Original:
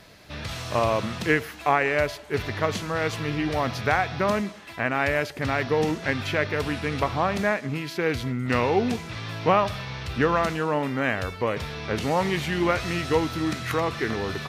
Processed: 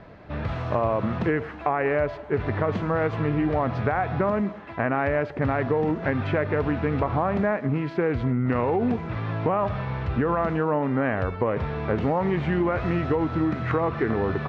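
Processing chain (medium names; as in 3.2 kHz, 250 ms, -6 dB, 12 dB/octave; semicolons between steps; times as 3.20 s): low-pass 1.3 kHz 12 dB/octave; peak limiter -16.5 dBFS, peak gain reduction 6.5 dB; compression, threshold -26 dBFS, peak gain reduction 5.5 dB; trim +6.5 dB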